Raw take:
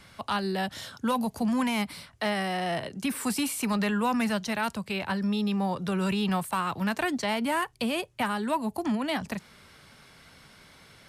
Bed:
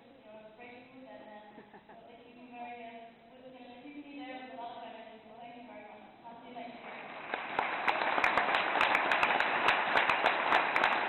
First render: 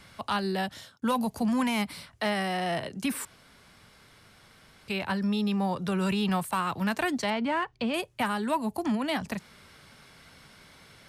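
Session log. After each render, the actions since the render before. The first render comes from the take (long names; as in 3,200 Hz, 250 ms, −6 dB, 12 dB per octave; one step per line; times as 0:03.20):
0:00.60–0:01.02: fade out
0:03.25–0:04.88: fill with room tone
0:07.30–0:07.94: high-frequency loss of the air 150 metres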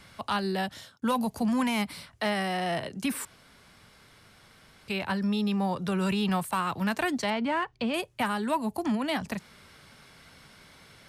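no processing that can be heard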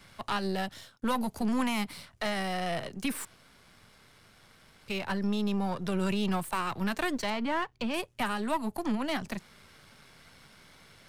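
gain on one half-wave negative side −7 dB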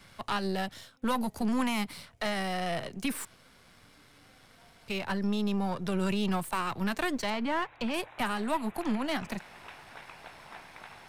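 mix in bed −20.5 dB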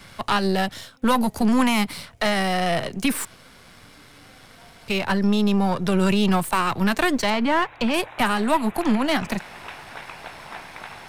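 level +10 dB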